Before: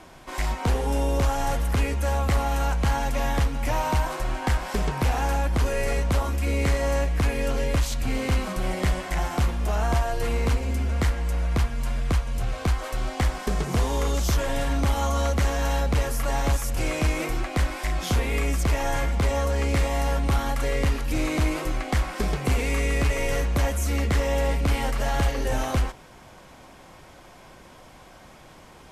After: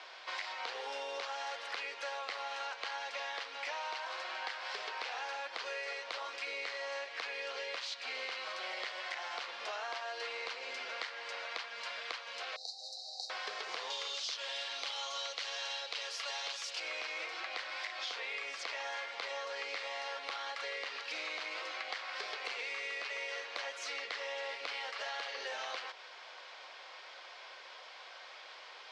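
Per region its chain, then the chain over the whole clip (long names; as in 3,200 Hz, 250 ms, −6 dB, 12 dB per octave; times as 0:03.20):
0:12.56–0:13.30: linear-phase brick-wall band-stop 850–3,700 Hz + guitar amp tone stack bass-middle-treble 10-0-10
0:13.90–0:16.80: high-pass filter 280 Hz + flat-topped bell 5,600 Hz +8.5 dB 2.4 octaves
whole clip: elliptic band-pass filter 470–4,600 Hz, stop band 70 dB; tilt shelving filter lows −8.5 dB, about 1,200 Hz; downward compressor, threshold −37 dBFS; level −1 dB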